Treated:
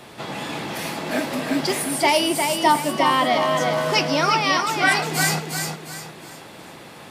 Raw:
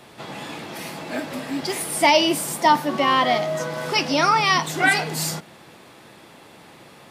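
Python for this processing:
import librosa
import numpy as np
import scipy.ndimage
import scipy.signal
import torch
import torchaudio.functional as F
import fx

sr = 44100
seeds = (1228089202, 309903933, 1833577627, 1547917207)

y = fx.rider(x, sr, range_db=4, speed_s=0.5)
y = fx.echo_feedback(y, sr, ms=355, feedback_pct=37, wet_db=-5.0)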